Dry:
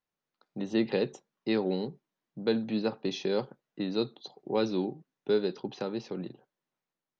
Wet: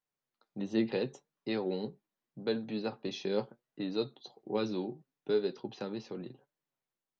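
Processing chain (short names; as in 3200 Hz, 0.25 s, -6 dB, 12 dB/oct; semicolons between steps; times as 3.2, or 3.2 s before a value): flange 0.76 Hz, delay 6.4 ms, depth 3.5 ms, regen +54%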